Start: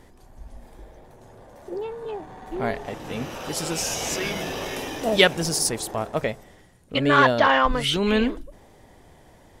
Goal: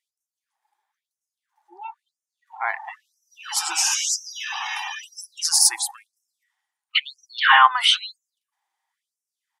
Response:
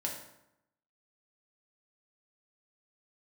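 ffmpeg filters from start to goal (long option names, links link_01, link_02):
-af "firequalizer=gain_entry='entry(230,0);entry(480,-28);entry(810,8)':delay=0.05:min_phase=1,afftdn=noise_reduction=29:noise_floor=-29,afftfilt=real='re*gte(b*sr/1024,320*pow(5300/320,0.5+0.5*sin(2*PI*1*pts/sr)))':imag='im*gte(b*sr/1024,320*pow(5300/320,0.5+0.5*sin(2*PI*1*pts/sr)))':win_size=1024:overlap=0.75"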